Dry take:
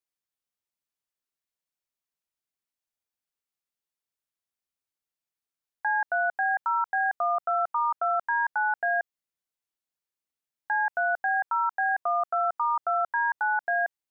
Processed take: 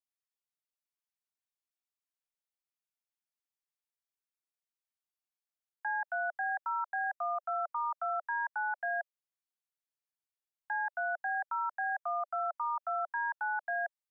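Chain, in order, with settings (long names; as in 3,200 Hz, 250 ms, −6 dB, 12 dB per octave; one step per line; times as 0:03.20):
Butterworth high-pass 600 Hz 96 dB per octave
level −8 dB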